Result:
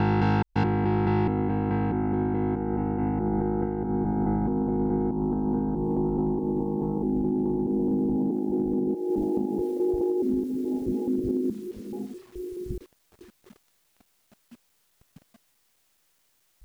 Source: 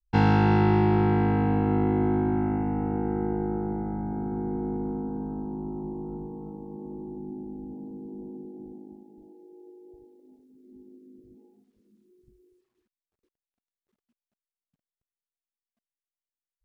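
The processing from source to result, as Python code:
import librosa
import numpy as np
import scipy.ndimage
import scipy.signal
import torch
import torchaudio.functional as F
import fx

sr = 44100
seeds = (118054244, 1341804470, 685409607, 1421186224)

y = fx.block_reorder(x, sr, ms=213.0, group=3)
y = fx.recorder_agc(y, sr, target_db=-16.0, rise_db_per_s=45.0, max_gain_db=30)
y = y * 10.0 ** (-2.5 / 20.0)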